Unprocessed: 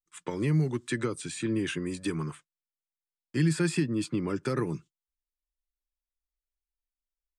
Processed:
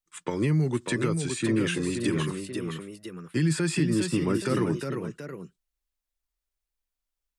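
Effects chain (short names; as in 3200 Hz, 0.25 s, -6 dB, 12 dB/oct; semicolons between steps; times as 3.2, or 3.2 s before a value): limiter -20.5 dBFS, peak gain reduction 5.5 dB; echoes that change speed 0.609 s, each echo +1 st, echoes 2, each echo -6 dB; gain +4 dB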